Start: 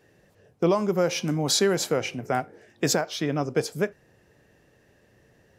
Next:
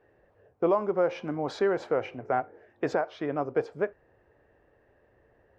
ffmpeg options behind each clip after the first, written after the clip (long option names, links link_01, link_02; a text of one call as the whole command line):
ffmpeg -i in.wav -af "lowpass=1300,equalizer=frequency=170:width=0.91:gain=-14,volume=1.5dB" out.wav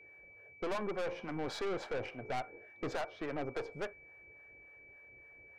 ffmpeg -i in.wav -filter_complex "[0:a]acrossover=split=630[link_01][link_02];[link_01]aeval=exprs='val(0)*(1-0.7/2+0.7/2*cos(2*PI*3.5*n/s))':channel_layout=same[link_03];[link_02]aeval=exprs='val(0)*(1-0.7/2-0.7/2*cos(2*PI*3.5*n/s))':channel_layout=same[link_04];[link_03][link_04]amix=inputs=2:normalize=0,aeval=exprs='(tanh(63.1*val(0)+0.5)-tanh(0.5))/63.1':channel_layout=same,aeval=exprs='val(0)+0.00141*sin(2*PI*2300*n/s)':channel_layout=same,volume=2dB" out.wav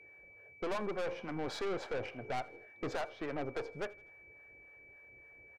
ffmpeg -i in.wav -af "aecho=1:1:81|162|243:0.0708|0.0347|0.017" out.wav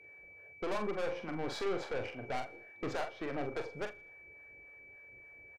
ffmpeg -i in.wav -filter_complex "[0:a]asplit=2[link_01][link_02];[link_02]adelay=43,volume=-7dB[link_03];[link_01][link_03]amix=inputs=2:normalize=0" out.wav